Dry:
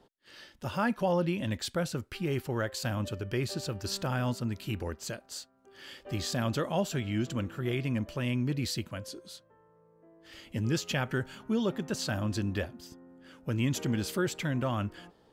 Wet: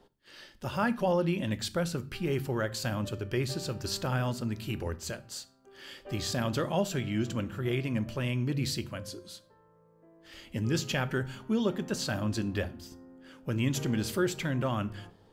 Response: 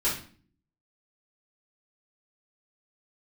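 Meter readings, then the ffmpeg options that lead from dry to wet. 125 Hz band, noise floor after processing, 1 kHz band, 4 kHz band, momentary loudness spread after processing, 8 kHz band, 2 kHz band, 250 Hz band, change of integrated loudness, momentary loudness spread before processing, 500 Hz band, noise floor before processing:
+0.5 dB, -62 dBFS, +0.5 dB, +0.5 dB, 15 LU, +0.5 dB, +0.5 dB, +0.5 dB, +0.5 dB, 14 LU, +1.0 dB, -63 dBFS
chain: -filter_complex "[0:a]asplit=2[s0][s1];[1:a]atrim=start_sample=2205,lowshelf=f=150:g=10.5,highshelf=f=9700:g=7.5[s2];[s1][s2]afir=irnorm=-1:irlink=0,volume=0.0668[s3];[s0][s3]amix=inputs=2:normalize=0"

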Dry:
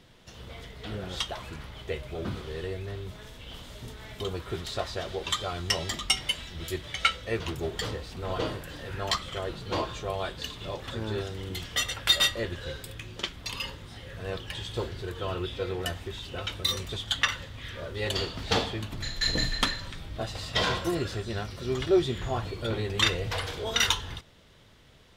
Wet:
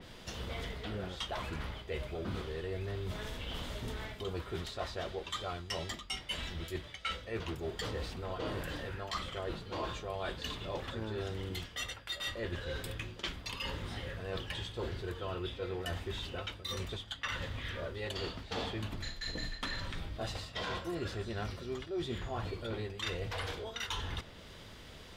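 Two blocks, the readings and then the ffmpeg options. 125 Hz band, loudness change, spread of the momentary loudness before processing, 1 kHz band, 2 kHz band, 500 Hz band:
-5.5 dB, -9.0 dB, 15 LU, -7.0 dB, -8.5 dB, -7.0 dB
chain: -af "equalizer=f=130:t=o:w=0.28:g=-6,areverse,acompressor=threshold=0.00891:ratio=10,areverse,aeval=exprs='val(0)+0.000224*sin(2*PI*4800*n/s)':c=same,adynamicequalizer=threshold=0.00112:dfrequency=3600:dqfactor=0.7:tfrequency=3600:tqfactor=0.7:attack=5:release=100:ratio=0.375:range=3:mode=cutabove:tftype=highshelf,volume=2"

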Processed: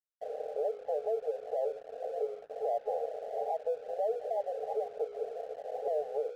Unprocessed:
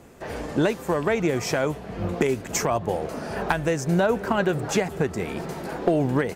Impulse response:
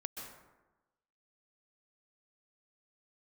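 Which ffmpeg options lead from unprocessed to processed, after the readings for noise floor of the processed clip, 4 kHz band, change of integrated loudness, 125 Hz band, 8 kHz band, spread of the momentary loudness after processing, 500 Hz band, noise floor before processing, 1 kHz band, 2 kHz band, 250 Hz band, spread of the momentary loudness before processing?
-52 dBFS, under -25 dB, -10.5 dB, under -40 dB, under -30 dB, 6 LU, -7.5 dB, -39 dBFS, -9.0 dB, under -30 dB, under -35 dB, 9 LU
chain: -af "afwtdn=0.0398,bandreject=f=60:t=h:w=6,bandreject=f=120:t=h:w=6,bandreject=f=180:t=h:w=6,bandreject=f=240:t=h:w=6,bandreject=f=300:t=h:w=6,bandreject=f=360:t=h:w=6,bandreject=f=420:t=h:w=6,bandreject=f=480:t=h:w=6,bandreject=f=540:t=h:w=6,afftfilt=real='re*between(b*sr/4096,410,830)':imag='im*between(b*sr/4096,410,830)':win_size=4096:overlap=0.75,alimiter=limit=0.0631:level=0:latency=1:release=163,aeval=exprs='sgn(val(0))*max(abs(val(0))-0.00133,0)':c=same"

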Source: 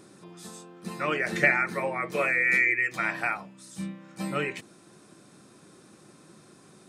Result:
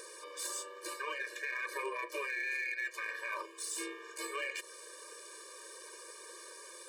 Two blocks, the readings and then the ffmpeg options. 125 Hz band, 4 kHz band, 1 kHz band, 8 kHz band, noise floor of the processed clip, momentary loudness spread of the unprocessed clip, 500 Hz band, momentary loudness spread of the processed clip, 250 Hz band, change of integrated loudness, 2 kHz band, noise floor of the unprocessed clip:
under -40 dB, -1.5 dB, -10.0 dB, +5.0 dB, -52 dBFS, 22 LU, -11.5 dB, 13 LU, -17.0 dB, -13.5 dB, -12.0 dB, -55 dBFS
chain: -af "highpass=f=1400:p=1,equalizer=f=3500:w=1.5:g=-4,areverse,acompressor=threshold=0.00794:ratio=6,areverse,alimiter=level_in=5.62:limit=0.0631:level=0:latency=1:release=110,volume=0.178,acompressor=mode=upward:threshold=0.00126:ratio=2.5,aeval=exprs='val(0)*sin(2*PI*140*n/s)':c=same,aeval=exprs='0.0112*(cos(1*acos(clip(val(0)/0.0112,-1,1)))-cos(1*PI/2))+0.000708*(cos(3*acos(clip(val(0)/0.0112,-1,1)))-cos(3*PI/2))+0.000708*(cos(4*acos(clip(val(0)/0.0112,-1,1)))-cos(4*PI/2))+0.000355*(cos(6*acos(clip(val(0)/0.0112,-1,1)))-cos(6*PI/2))+0.000316*(cos(8*acos(clip(val(0)/0.0112,-1,1)))-cos(8*PI/2))':c=same,afftfilt=real='re*eq(mod(floor(b*sr/1024/310),2),1)':imag='im*eq(mod(floor(b*sr/1024/310),2),1)':win_size=1024:overlap=0.75,volume=7.94"

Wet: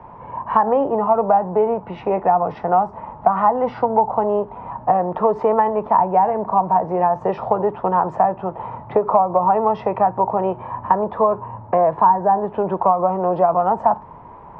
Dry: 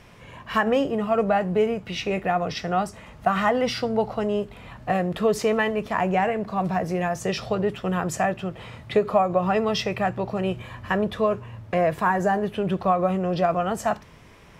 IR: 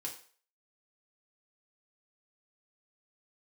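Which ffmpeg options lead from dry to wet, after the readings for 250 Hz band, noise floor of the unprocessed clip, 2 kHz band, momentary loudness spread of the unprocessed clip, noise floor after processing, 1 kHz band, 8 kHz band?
-0.5 dB, -48 dBFS, -8.0 dB, 6 LU, -40 dBFS, +9.5 dB, under -30 dB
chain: -filter_complex "[0:a]lowpass=f=920:t=q:w=8,acrossover=split=110|280[s0][s1][s2];[s0]acompressor=threshold=0.00178:ratio=4[s3];[s1]acompressor=threshold=0.0126:ratio=4[s4];[s2]acompressor=threshold=0.126:ratio=4[s5];[s3][s4][s5]amix=inputs=3:normalize=0,volume=1.78"

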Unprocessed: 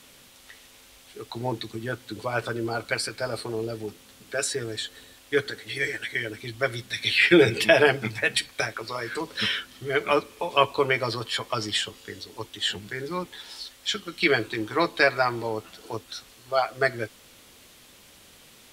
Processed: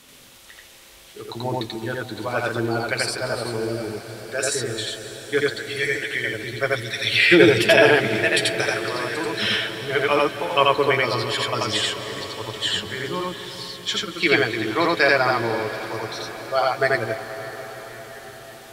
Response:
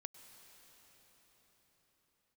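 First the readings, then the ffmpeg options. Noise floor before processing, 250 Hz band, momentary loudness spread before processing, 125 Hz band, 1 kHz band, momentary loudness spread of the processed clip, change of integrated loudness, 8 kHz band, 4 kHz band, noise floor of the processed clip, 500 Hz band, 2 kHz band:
-53 dBFS, +5.0 dB, 16 LU, +4.5 dB, +5.0 dB, 15 LU, +4.5 dB, +4.5 dB, +5.0 dB, -47 dBFS, +5.0 dB, +5.0 dB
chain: -filter_complex "[0:a]asplit=2[s0][s1];[1:a]atrim=start_sample=2205,asetrate=31752,aresample=44100,adelay=86[s2];[s1][s2]afir=irnorm=-1:irlink=0,volume=1.58[s3];[s0][s3]amix=inputs=2:normalize=0,volume=1.19"

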